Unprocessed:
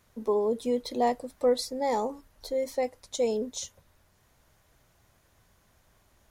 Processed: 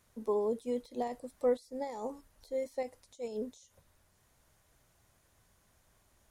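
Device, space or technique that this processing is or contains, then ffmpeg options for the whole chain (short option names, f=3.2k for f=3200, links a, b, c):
de-esser from a sidechain: -filter_complex "[0:a]asplit=2[a][b];[b]highpass=f=4.4k:w=0.5412,highpass=f=4.4k:w=1.3066,apad=whole_len=278218[c];[a][c]sidechaincompress=threshold=-54dB:ratio=8:attack=1.1:release=62,equalizer=f=9.1k:t=o:w=0.85:g=5.5,volume=-5dB"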